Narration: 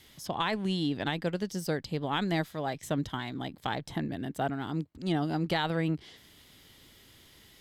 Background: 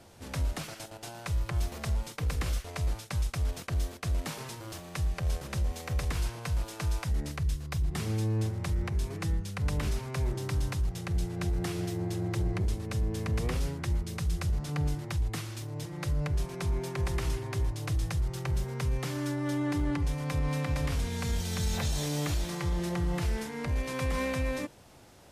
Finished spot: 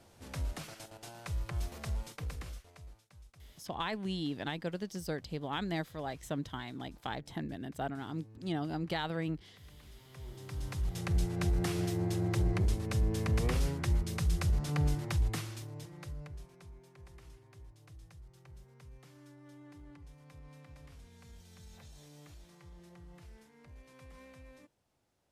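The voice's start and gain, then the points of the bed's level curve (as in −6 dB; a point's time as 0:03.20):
3.40 s, −6.0 dB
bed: 0:02.13 −6 dB
0:03.09 −26 dB
0:09.82 −26 dB
0:11.03 0 dB
0:15.28 0 dB
0:16.78 −23.5 dB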